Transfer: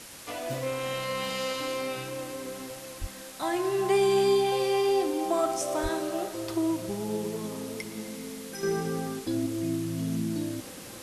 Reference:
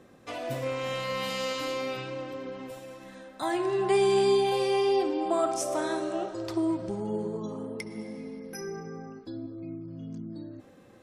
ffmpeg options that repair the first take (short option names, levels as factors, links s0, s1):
-filter_complex "[0:a]asplit=3[s0][s1][s2];[s0]afade=t=out:st=3:d=0.02[s3];[s1]highpass=f=140:w=0.5412,highpass=f=140:w=1.3066,afade=t=in:st=3:d=0.02,afade=t=out:st=3.12:d=0.02[s4];[s2]afade=t=in:st=3.12:d=0.02[s5];[s3][s4][s5]amix=inputs=3:normalize=0,asplit=3[s6][s7][s8];[s6]afade=t=out:st=5.82:d=0.02[s9];[s7]highpass=f=140:w=0.5412,highpass=f=140:w=1.3066,afade=t=in:st=5.82:d=0.02,afade=t=out:st=5.94:d=0.02[s10];[s8]afade=t=in:st=5.94:d=0.02[s11];[s9][s10][s11]amix=inputs=3:normalize=0,afwtdn=0.0063,asetnsamples=n=441:p=0,asendcmd='8.63 volume volume -9dB',volume=1"